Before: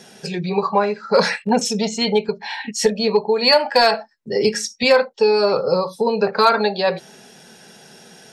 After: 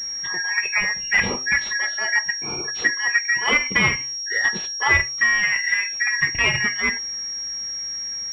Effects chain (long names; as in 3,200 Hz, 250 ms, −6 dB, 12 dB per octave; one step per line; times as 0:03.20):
band-splitting scrambler in four parts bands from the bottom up 2143
hum removal 129.4 Hz, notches 24
switching amplifier with a slow clock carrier 5,600 Hz
level −2 dB